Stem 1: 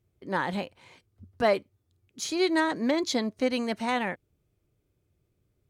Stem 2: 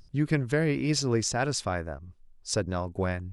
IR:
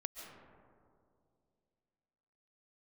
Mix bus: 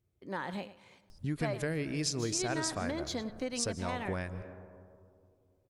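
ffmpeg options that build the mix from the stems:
-filter_complex "[0:a]volume=-6.5dB,asplit=3[a][b][c];[b]volume=-22.5dB[d];[c]volume=-15.5dB[e];[1:a]aemphasis=mode=production:type=cd,adelay=1100,volume=-4.5dB,asplit=2[f][g];[g]volume=-6dB[h];[2:a]atrim=start_sample=2205[i];[d][h]amix=inputs=2:normalize=0[j];[j][i]afir=irnorm=-1:irlink=0[k];[e]aecho=0:1:103:1[l];[a][f][k][l]amix=inputs=4:normalize=0,acompressor=threshold=-35dB:ratio=2"

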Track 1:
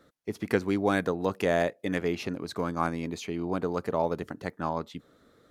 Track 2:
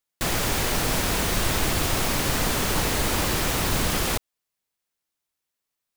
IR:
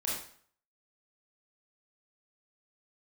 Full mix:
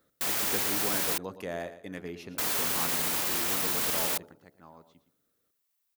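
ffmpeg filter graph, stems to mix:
-filter_complex "[0:a]bandreject=f=72.03:t=h:w=4,bandreject=f=144.06:t=h:w=4,bandreject=f=216.09:t=h:w=4,bandreject=f=288.12:t=h:w=4,bandreject=f=360.15:t=h:w=4,bandreject=f=432.18:t=h:w=4,bandreject=f=504.21:t=h:w=4,bandreject=f=576.24:t=h:w=4,bandreject=f=648.27:t=h:w=4,bandreject=f=720.3:t=h:w=4,bandreject=f=792.33:t=h:w=4,volume=-10.5dB,afade=t=out:st=4.06:d=0.38:silence=0.281838,asplit=2[a][b];[b]volume=-12.5dB[c];[1:a]highpass=f=610:p=1,alimiter=limit=-23dB:level=0:latency=1:release=27,volume=-1dB,asplit=3[d][e][f];[d]atrim=end=1.18,asetpts=PTS-STARTPTS,afade=t=out:st=1.176:d=0.004:c=hsin[g];[e]atrim=start=1.18:end=2.38,asetpts=PTS-STARTPTS,volume=0[h];[f]atrim=start=2.38,asetpts=PTS-STARTPTS,afade=t=in:d=0.004:c=hsin[i];[g][h][i]concat=n=3:v=0:a=1[j];[c]aecho=0:1:115|230|345|460:1|0.26|0.0676|0.0176[k];[a][j][k]amix=inputs=3:normalize=0,highshelf=f=11k:g=11"

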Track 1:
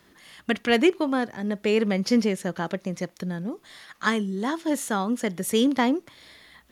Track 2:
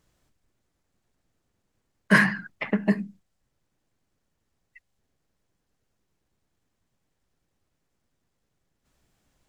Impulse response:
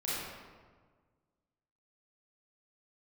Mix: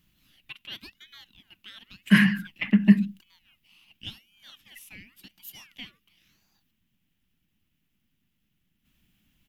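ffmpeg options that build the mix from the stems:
-filter_complex "[0:a]highpass=1.2k,aeval=exprs='val(0)*sin(2*PI*1800*n/s+1800*0.55/0.92*sin(2*PI*0.92*n/s))':c=same,volume=-12.5dB,asplit=2[a][b];[1:a]volume=1dB[c];[b]apad=whole_len=418401[d];[c][d]sidechaincompress=threshold=-43dB:ratio=8:attack=16:release=532[e];[a][e]amix=inputs=2:normalize=0,firequalizer=gain_entry='entry(130,0);entry(200,7);entry(460,-14);entry(2900,9);entry(4200,-3);entry(8300,-7);entry(12000,7)':delay=0.05:min_phase=1"

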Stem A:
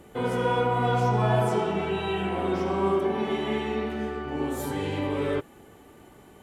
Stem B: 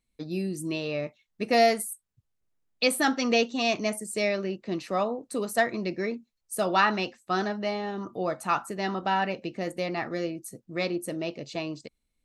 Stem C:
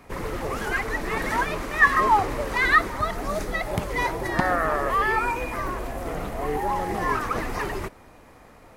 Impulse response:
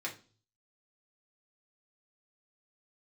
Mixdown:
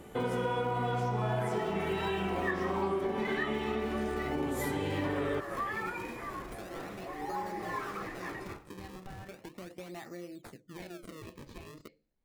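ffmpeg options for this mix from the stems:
-filter_complex "[0:a]volume=0.5dB[a];[1:a]acompressor=threshold=-33dB:ratio=3,volume=-6dB,asplit=3[b][c][d];[c]volume=-12.5dB[e];[2:a]adelay=650,volume=-6.5dB,asplit=2[f][g];[g]volume=-7.5dB[h];[d]apad=whole_len=415044[i];[f][i]sidechaincompress=threshold=-59dB:ratio=8:attack=16:release=477[j];[b][j]amix=inputs=2:normalize=0,acrusher=samples=35:mix=1:aa=0.000001:lfo=1:lforange=56:lforate=0.37,acompressor=threshold=-43dB:ratio=6,volume=0dB[k];[3:a]atrim=start_sample=2205[l];[e][h]amix=inputs=2:normalize=0[m];[m][l]afir=irnorm=-1:irlink=0[n];[a][k][n]amix=inputs=3:normalize=0,acompressor=threshold=-30dB:ratio=4"

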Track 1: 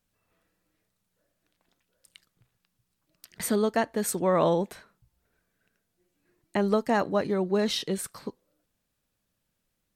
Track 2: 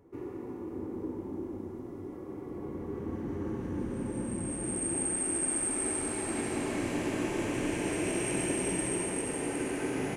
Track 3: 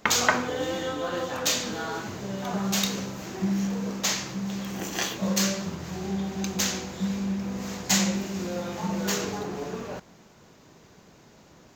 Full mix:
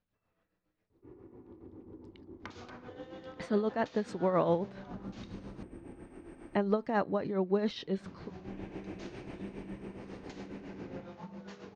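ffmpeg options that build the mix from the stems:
-filter_complex "[0:a]volume=-2dB,asplit=2[a][b];[1:a]lowshelf=f=97:g=10.5,adelay=900,volume=-11.5dB[c];[2:a]aeval=exprs='(mod(3.35*val(0)+1,2)-1)/3.35':c=same,acompressor=threshold=-32dB:ratio=6,adelay=2400,volume=-9dB,asplit=3[d][e][f];[d]atrim=end=5.63,asetpts=PTS-STARTPTS,afade=t=out:st=5.626:d=0.004:c=hsin[g];[e]atrim=start=5.63:end=8,asetpts=PTS-STARTPTS,volume=0[h];[f]atrim=start=8,asetpts=PTS-STARTPTS,afade=t=in:d=0.004:c=hsin[i];[g][h][i]concat=n=3:v=0:a=1[j];[b]apad=whole_len=487968[k];[c][k]sidechaincompress=threshold=-53dB:ratio=5:attack=16:release=172[l];[a][l][j]amix=inputs=3:normalize=0,highshelf=f=3.1k:g=-11,tremolo=f=7.3:d=0.6,lowpass=f=5.4k:w=0.5412,lowpass=f=5.4k:w=1.3066"

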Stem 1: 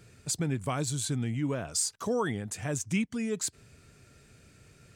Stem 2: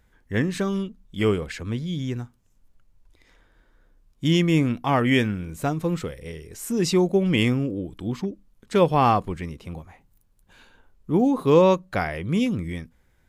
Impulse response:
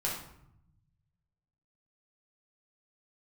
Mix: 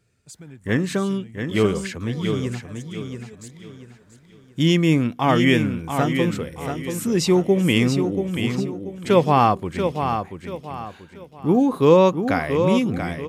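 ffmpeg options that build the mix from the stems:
-filter_complex "[0:a]volume=-11.5dB,asplit=2[a][b];[b]volume=-13dB[c];[1:a]highpass=89,adelay=350,volume=2.5dB,asplit=2[d][e];[e]volume=-7dB[f];[c][f]amix=inputs=2:normalize=0,aecho=0:1:684|1368|2052|2736|3420:1|0.34|0.116|0.0393|0.0134[g];[a][d][g]amix=inputs=3:normalize=0"

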